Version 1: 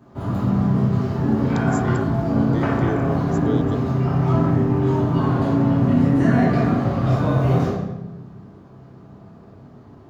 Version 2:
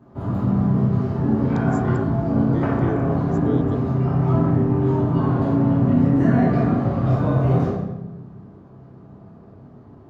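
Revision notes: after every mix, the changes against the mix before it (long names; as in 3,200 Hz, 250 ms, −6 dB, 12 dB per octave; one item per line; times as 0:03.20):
master: add high-shelf EQ 2,000 Hz −10.5 dB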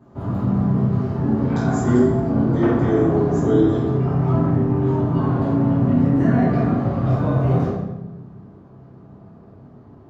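speech: send on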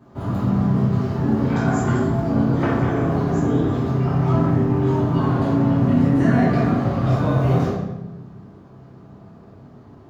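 speech −10.0 dB
master: add high-shelf EQ 2,000 Hz +10.5 dB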